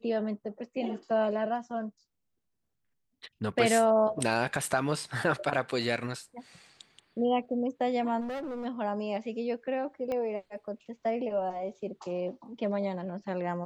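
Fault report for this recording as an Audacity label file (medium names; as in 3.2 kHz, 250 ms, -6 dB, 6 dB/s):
8.200000	8.660000	clipped -33.5 dBFS
10.120000	10.120000	pop -22 dBFS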